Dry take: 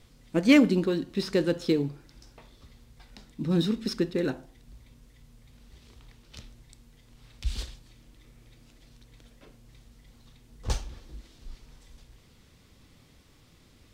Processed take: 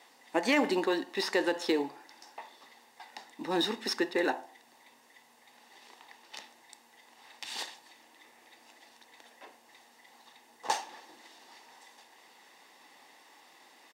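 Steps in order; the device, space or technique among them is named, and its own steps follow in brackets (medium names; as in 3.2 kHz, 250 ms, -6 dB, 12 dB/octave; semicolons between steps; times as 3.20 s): laptop speaker (high-pass 340 Hz 24 dB/octave; peaking EQ 840 Hz +11 dB 0.57 oct; peaking EQ 1.9 kHz +6.5 dB 0.5 oct; peak limiter -18.5 dBFS, peak gain reduction 11 dB); comb 1.1 ms, depth 34%; trim +2 dB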